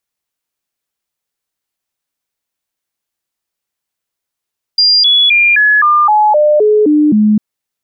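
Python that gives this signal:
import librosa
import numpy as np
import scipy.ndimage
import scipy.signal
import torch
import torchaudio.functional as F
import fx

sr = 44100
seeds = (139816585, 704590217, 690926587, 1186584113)

y = fx.stepped_sweep(sr, from_hz=4800.0, direction='down', per_octave=2, tones=10, dwell_s=0.26, gap_s=0.0, level_db=-5.5)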